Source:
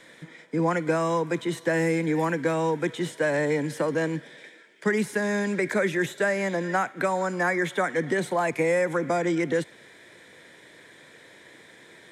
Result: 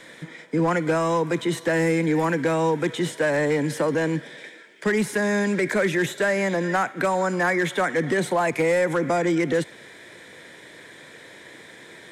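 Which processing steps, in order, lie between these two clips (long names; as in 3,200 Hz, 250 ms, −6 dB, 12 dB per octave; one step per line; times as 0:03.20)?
in parallel at −0.5 dB: brickwall limiter −24 dBFS, peak gain reduction 10.5 dB
on the sum: hard clipping −15.5 dBFS, distortion −23 dB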